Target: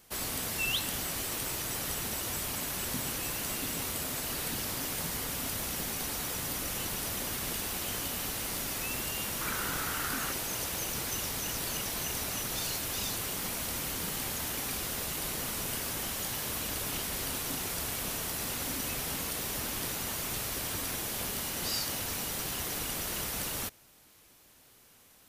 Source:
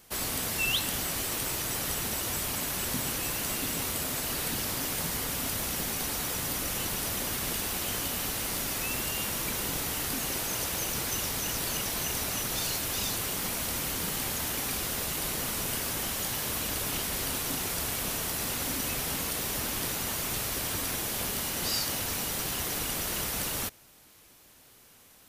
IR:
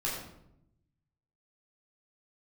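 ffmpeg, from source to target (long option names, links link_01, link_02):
-filter_complex "[0:a]asettb=1/sr,asplit=3[link_01][link_02][link_03];[link_01]atrim=end=9.414[link_04];[link_02]atrim=start=9.41:end=10.32,asetpts=PTS-STARTPTS,afade=type=in:duration=0.004:curve=qsin,afade=type=out:start_time=0.906:duration=0.004:curve=qsin,equalizer=frequency=1400:width_type=o:width=0.61:gain=12[link_05];[link_03]atrim=start=10.316[link_06];[link_04][link_05]acrossfade=duration=0.004:curve1=hsin:curve2=qsin[link_07];[link_07][link_06]acrossfade=duration=0.004:curve1=qsin:curve2=hsin,volume=-3dB"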